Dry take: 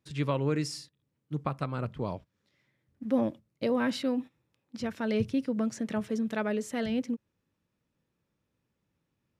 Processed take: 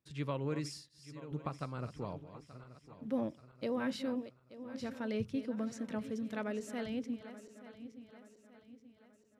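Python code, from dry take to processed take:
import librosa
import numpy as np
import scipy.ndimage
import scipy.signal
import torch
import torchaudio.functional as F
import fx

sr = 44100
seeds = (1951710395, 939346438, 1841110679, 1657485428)

y = fx.reverse_delay_fb(x, sr, ms=440, feedback_pct=66, wet_db=-12.5)
y = y * 10.0 ** (-8.0 / 20.0)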